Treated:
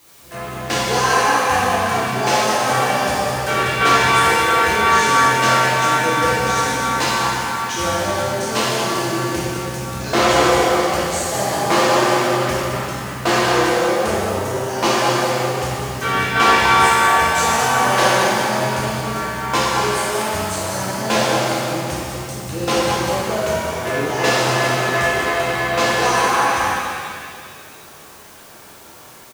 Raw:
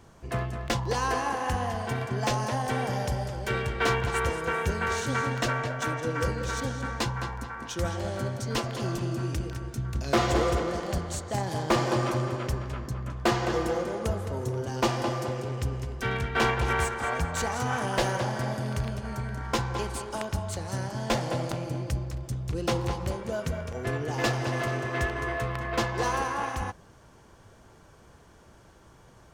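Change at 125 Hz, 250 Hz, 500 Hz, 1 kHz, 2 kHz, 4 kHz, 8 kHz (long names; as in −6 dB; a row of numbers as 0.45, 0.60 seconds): +3.0, +9.0, +11.5, +15.0, +14.0, +15.0, +15.0 decibels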